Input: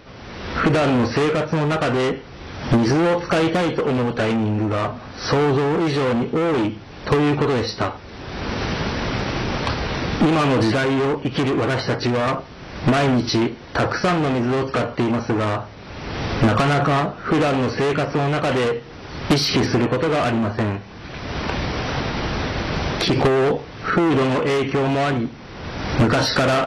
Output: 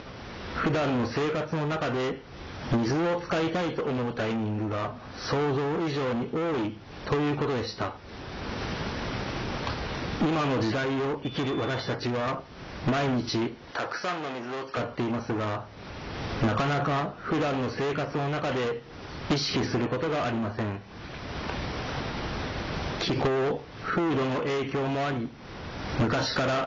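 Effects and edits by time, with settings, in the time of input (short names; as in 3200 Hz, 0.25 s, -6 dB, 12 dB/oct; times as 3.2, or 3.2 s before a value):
11.23–11.92 whine 3500 Hz -35 dBFS
13.71–14.77 HPF 620 Hz 6 dB/oct
whole clip: Chebyshev low-pass 7100 Hz, order 10; upward compressor, threshold -26 dBFS; gain -8 dB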